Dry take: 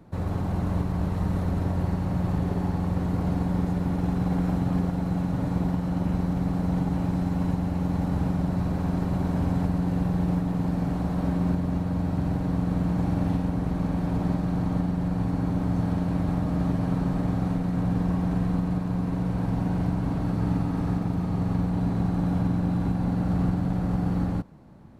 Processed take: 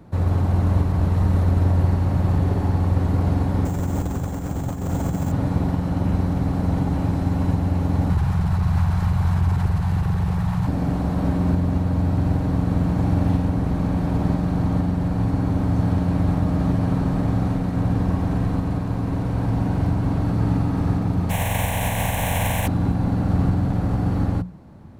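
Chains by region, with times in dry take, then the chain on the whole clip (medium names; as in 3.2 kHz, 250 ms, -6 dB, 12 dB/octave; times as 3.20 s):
3.65–5.32 s: compressor with a negative ratio -27 dBFS, ratio -0.5 + careless resampling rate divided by 6×, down none, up hold
8.10–10.67 s: Chebyshev band-stop 150–920 Hz + overload inside the chain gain 23.5 dB + level flattener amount 100%
21.29–22.66 s: spectral contrast reduction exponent 0.44 + static phaser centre 1.3 kHz, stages 6
whole clip: peaking EQ 90 Hz +6.5 dB 0.68 oct; hum notches 60/120/180 Hz; trim +4.5 dB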